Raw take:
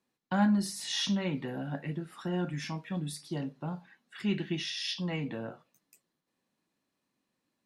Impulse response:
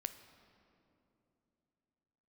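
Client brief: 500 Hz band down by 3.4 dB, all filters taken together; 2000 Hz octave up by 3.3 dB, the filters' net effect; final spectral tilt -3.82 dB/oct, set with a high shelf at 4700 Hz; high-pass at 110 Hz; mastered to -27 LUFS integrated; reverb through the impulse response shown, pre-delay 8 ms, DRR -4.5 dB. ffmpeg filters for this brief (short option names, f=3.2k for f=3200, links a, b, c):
-filter_complex "[0:a]highpass=110,equalizer=f=500:t=o:g=-5,equalizer=f=2k:t=o:g=4,highshelf=f=4.7k:g=3,asplit=2[a][b];[1:a]atrim=start_sample=2205,adelay=8[c];[b][c]afir=irnorm=-1:irlink=0,volume=6.5dB[d];[a][d]amix=inputs=2:normalize=0,volume=1.5dB"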